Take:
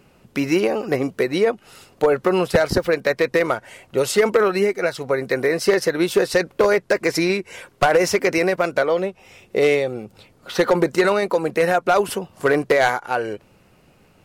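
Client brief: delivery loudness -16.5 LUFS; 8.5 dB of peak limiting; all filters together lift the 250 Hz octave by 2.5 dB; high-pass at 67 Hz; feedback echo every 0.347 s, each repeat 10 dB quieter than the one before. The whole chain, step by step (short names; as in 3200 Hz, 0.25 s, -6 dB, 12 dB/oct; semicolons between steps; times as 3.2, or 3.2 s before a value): HPF 67 Hz; bell 250 Hz +4 dB; limiter -12 dBFS; feedback echo 0.347 s, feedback 32%, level -10 dB; gain +5.5 dB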